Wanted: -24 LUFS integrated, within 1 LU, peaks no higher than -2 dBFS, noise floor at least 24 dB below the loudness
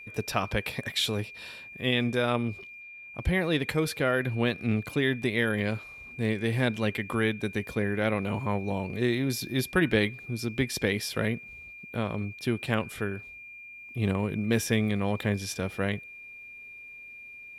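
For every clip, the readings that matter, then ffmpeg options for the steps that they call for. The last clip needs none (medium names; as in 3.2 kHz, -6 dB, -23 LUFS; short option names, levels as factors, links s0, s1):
steady tone 2.4 kHz; tone level -43 dBFS; loudness -29.0 LUFS; peak level -10.5 dBFS; loudness target -24.0 LUFS
-> -af "bandreject=f=2400:w=30"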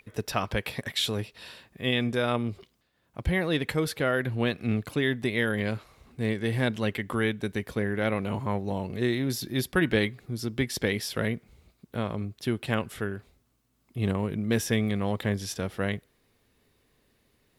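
steady tone not found; loudness -29.0 LUFS; peak level -11.0 dBFS; loudness target -24.0 LUFS
-> -af "volume=1.78"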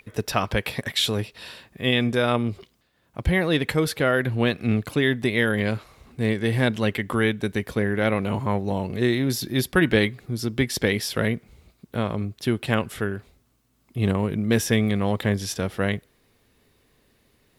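loudness -24.0 LUFS; peak level -6.0 dBFS; noise floor -66 dBFS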